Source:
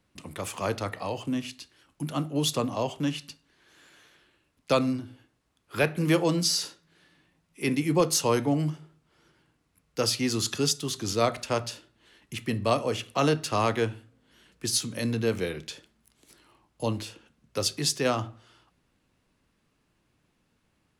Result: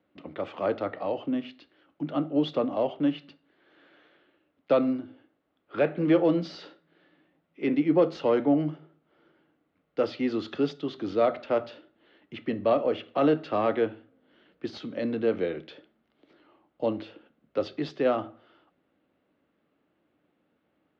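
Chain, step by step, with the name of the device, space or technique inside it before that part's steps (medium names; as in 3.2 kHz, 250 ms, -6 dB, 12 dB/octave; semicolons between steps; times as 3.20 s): overdrive pedal into a guitar cabinet (overdrive pedal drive 11 dB, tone 1.1 kHz, clips at -11 dBFS; cabinet simulation 100–3500 Hz, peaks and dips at 120 Hz -8 dB, 300 Hz +6 dB, 570 Hz +4 dB, 1 kHz -8 dB, 1.7 kHz -4 dB, 2.5 kHz -5 dB)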